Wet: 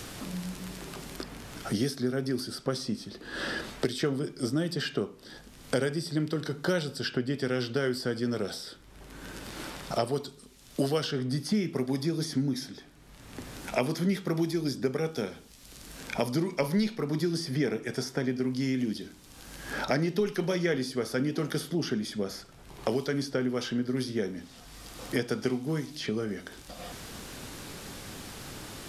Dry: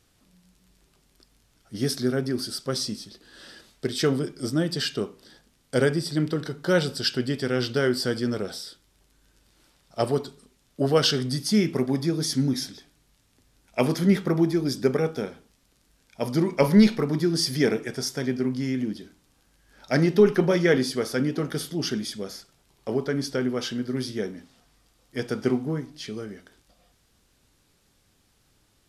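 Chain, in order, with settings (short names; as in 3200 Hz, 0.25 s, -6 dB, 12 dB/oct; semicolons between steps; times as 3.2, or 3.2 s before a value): three-band squash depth 100%; gain -5 dB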